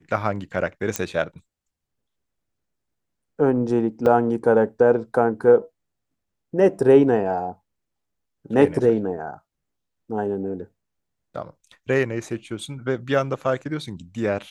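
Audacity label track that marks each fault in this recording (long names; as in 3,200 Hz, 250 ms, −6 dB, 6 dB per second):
0.960000	0.960000	click −6 dBFS
4.060000	4.060000	drop-out 4.2 ms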